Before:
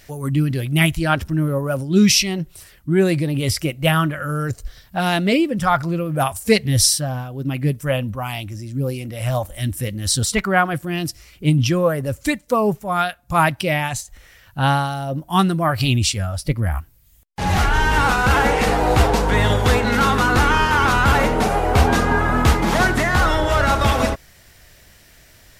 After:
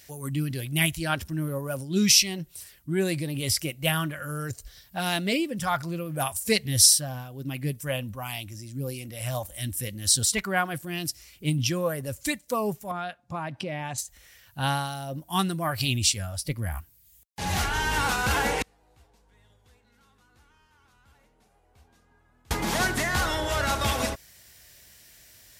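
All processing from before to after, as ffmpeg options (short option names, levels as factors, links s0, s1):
-filter_complex "[0:a]asettb=1/sr,asplit=3[s0][s1][s2];[s0]atrim=end=12.914[s3];[s1]atrim=start=12.91:end=13.98,asetpts=PTS-STARTPTS,afade=t=in:d=0.004:c=qsin,afade=t=out:st=1.066:d=0.004:c=qsin,tiltshelf=f=1500:g=7,acompressor=threshold=0.126:ratio=12:attack=3.2:release=140:knee=1:detection=peak,highpass=140,lowpass=6000[s4];[s2]atrim=start=13.976[s5];[s3][s4]acrossfade=d=0.004:c1=hsin:c2=qsin[s6];[s6][s5]acrossfade=d=0.004:c1=qsin:c2=hsin,asettb=1/sr,asplit=3[s7][s8][s9];[s7]atrim=end=18.624[s10];[s8]atrim=start=18.62:end=22.51,asetpts=PTS-STARTPTS,afade=t=in:d=0.004:c=qsin,afade=t=out:st=3.886:d=0.004:c=qsin,agate=range=0.0126:threshold=0.501:ratio=16:release=100:detection=peak,lowshelf=f=82:g=10.5[s11];[s9]atrim=start=22.506[s12];[s10][s11]acrossfade=d=0.004:c1=hsin:c2=qsin[s13];[s13][s12]acrossfade=d=0.004:c1=qsin:c2=hsin,highpass=46,highshelf=f=3100:g=11,bandreject=f=1300:w=16,volume=0.316"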